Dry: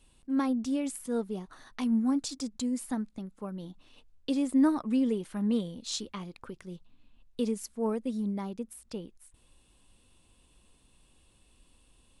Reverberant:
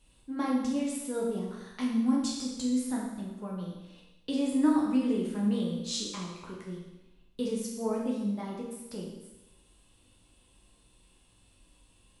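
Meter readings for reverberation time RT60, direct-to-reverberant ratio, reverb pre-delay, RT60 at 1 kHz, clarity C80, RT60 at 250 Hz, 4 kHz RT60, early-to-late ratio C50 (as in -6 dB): 1.0 s, -3.5 dB, 9 ms, 1.0 s, 4.5 dB, 1.0 s, 1.0 s, 2.0 dB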